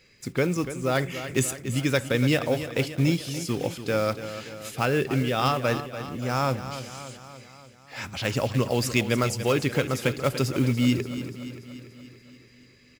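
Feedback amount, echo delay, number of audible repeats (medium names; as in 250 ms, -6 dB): 59%, 289 ms, 6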